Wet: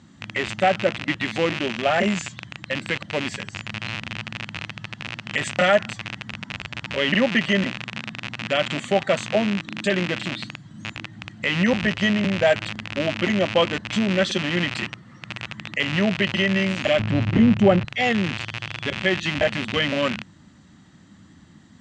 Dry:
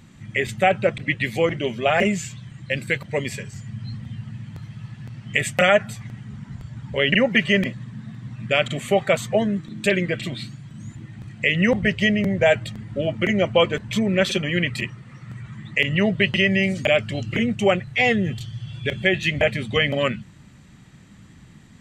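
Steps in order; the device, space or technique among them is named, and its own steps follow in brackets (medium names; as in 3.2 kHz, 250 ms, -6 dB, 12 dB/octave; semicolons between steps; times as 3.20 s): car door speaker with a rattle (rattle on loud lows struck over -32 dBFS, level -12 dBFS; cabinet simulation 83–7300 Hz, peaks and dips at 130 Hz -9 dB, 300 Hz +4 dB, 440 Hz -6 dB, 2.4 kHz -9 dB); 16.99–17.85 s: tilt EQ -3.5 dB/octave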